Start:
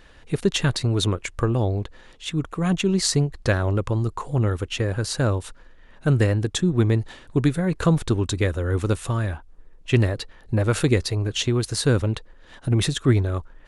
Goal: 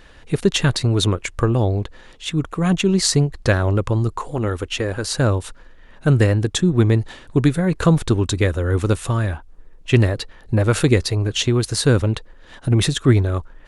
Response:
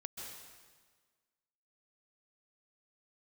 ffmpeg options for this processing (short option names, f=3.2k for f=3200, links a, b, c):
-filter_complex "[0:a]asettb=1/sr,asplit=3[a][b][c];[a]atrim=end=4.164[d];[b]atrim=start=4.16:end=5.12,asetpts=PTS-STARTPTS,afade=t=in:d=0.004:c=qsin,afade=t=out:st=0.956:d=0.004:c=qsin,equalizer=f=130:t=o:w=0.85:g=-10[e];[c]atrim=start=5.116[f];[d][e]acrossfade=d=0.004:c1=hsin:c2=qsin[g];[g][f]acrossfade=d=0.004:c1=qsin:c2=hsin,volume=4dB"